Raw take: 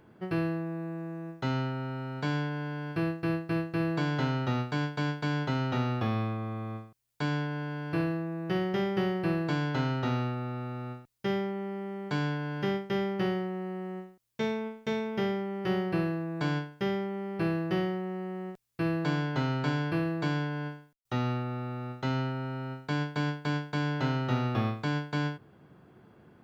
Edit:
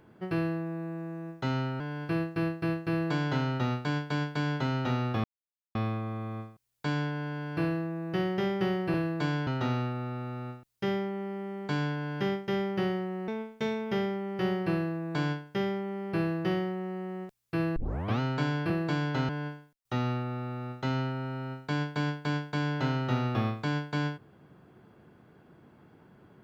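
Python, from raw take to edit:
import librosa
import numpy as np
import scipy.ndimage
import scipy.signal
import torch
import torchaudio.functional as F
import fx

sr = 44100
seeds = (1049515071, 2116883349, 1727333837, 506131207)

y = fx.edit(x, sr, fx.cut(start_s=1.8, length_s=0.87),
    fx.insert_silence(at_s=6.11, length_s=0.51),
    fx.swap(start_s=9.3, length_s=0.59, other_s=19.96, other_length_s=0.53),
    fx.cut(start_s=13.7, length_s=0.84),
    fx.tape_start(start_s=19.02, length_s=0.44), tone=tone)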